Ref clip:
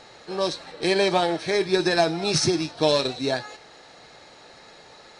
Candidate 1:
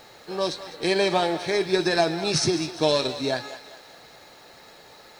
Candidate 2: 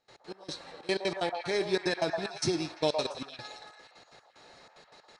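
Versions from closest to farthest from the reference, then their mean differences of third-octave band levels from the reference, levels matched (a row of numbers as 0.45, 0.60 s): 1, 2; 2.0, 4.5 dB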